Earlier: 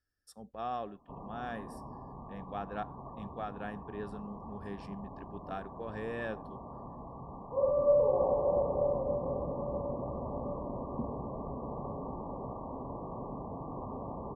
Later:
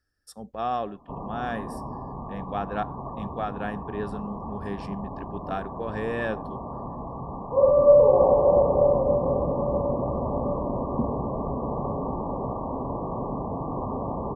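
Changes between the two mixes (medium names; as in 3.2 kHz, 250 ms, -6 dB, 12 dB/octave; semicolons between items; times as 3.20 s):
speech +9.0 dB; background +10.5 dB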